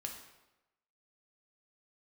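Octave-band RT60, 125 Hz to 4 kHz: 0.95 s, 0.95 s, 1.0 s, 1.0 s, 0.90 s, 0.80 s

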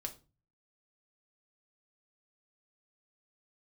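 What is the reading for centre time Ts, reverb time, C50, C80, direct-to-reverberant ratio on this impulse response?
8 ms, 0.30 s, 14.5 dB, 20.0 dB, 3.5 dB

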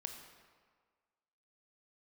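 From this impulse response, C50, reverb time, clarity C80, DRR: 5.5 dB, 1.6 s, 7.0 dB, 4.0 dB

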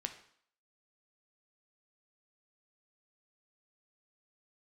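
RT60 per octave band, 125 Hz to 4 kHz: 0.45 s, 0.60 s, 0.55 s, 0.65 s, 0.60 s, 0.60 s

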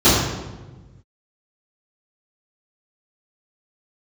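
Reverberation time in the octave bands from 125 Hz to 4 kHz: 2.0 s, 1.6 s, 1.3 s, 1.1 s, 0.95 s, 0.80 s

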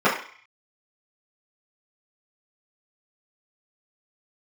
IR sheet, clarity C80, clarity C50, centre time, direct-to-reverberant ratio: 10.5 dB, 6.0 dB, 32 ms, -12.0 dB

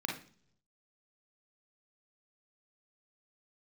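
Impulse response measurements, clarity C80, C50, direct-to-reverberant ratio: 12.5 dB, 4.0 dB, -1.0 dB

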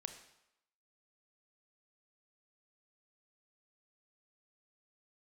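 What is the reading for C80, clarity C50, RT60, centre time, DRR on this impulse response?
11.5 dB, 9.5 dB, 0.85 s, 15 ms, 7.0 dB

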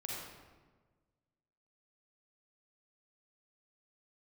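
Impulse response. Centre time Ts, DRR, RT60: 93 ms, -4.0 dB, 1.4 s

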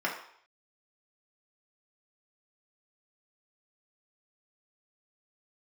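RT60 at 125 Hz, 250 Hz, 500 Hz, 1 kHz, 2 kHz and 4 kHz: 0.35 s, 0.45 s, 0.60 s, 0.65 s, 0.60 s, 0.60 s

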